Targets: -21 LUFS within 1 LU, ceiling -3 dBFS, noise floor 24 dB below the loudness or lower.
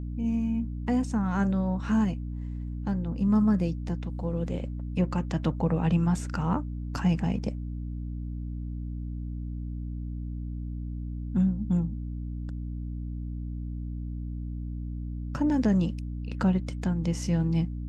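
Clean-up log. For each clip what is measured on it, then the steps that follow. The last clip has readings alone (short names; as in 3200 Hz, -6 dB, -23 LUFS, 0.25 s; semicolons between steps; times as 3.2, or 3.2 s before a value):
hum 60 Hz; harmonics up to 300 Hz; hum level -31 dBFS; loudness -30.0 LUFS; peak -13.5 dBFS; loudness target -21.0 LUFS
-> notches 60/120/180/240/300 Hz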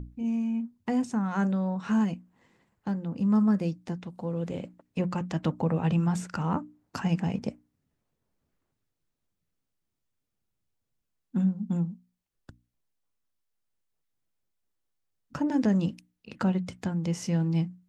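hum none; loudness -29.0 LUFS; peak -14.5 dBFS; loudness target -21.0 LUFS
-> gain +8 dB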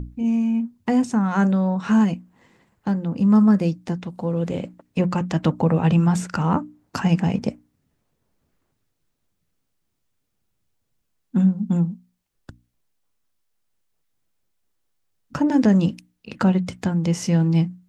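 loudness -21.0 LUFS; peak -6.5 dBFS; noise floor -74 dBFS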